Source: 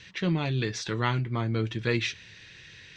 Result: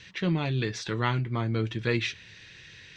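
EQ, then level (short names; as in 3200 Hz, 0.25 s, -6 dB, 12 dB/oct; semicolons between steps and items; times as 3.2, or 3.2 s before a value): dynamic EQ 6200 Hz, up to -3 dB, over -48 dBFS, Q 1.3; 0.0 dB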